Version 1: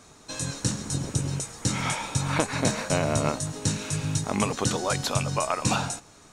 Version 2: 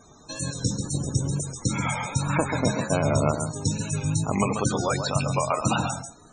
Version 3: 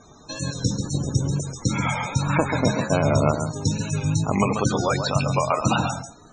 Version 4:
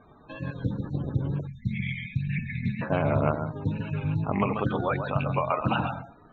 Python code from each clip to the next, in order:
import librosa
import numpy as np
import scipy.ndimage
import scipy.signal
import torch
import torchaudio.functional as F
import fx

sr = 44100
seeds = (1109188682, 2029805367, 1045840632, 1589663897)

y1 = x + 10.0 ** (-6.5 / 20.0) * np.pad(x, (int(136 * sr / 1000.0), 0))[:len(x)]
y1 = fx.wow_flutter(y1, sr, seeds[0], rate_hz=2.1, depth_cents=58.0)
y1 = fx.spec_topn(y1, sr, count=64)
y1 = y1 * librosa.db_to_amplitude(1.5)
y2 = scipy.signal.sosfilt(scipy.signal.butter(4, 6600.0, 'lowpass', fs=sr, output='sos'), y1)
y2 = y2 * librosa.db_to_amplitude(3.0)
y3 = fx.spec_erase(y2, sr, start_s=1.47, length_s=1.34, low_hz=250.0, high_hz=1700.0)
y3 = scipy.signal.sosfilt(scipy.signal.ellip(4, 1.0, 40, 3200.0, 'lowpass', fs=sr, output='sos'), y3)
y3 = fx.doppler_dist(y3, sr, depth_ms=0.18)
y3 = y3 * librosa.db_to_amplitude(-4.0)